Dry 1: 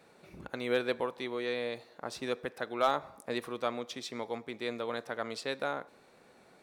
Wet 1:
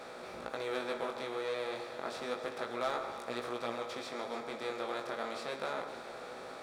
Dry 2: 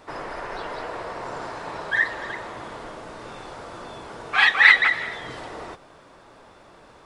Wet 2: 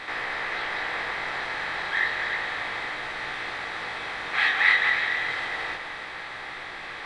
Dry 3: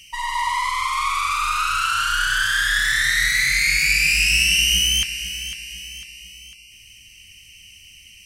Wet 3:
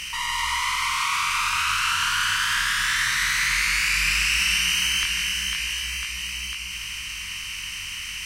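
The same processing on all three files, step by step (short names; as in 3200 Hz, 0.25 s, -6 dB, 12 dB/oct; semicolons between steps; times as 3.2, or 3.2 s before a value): per-bin compression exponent 0.4; chorus 0.31 Hz, delay 16 ms, depth 6.8 ms; on a send: echo with dull and thin repeats by turns 0.144 s, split 1400 Hz, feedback 73%, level -9.5 dB; on the sum: gain -7 dB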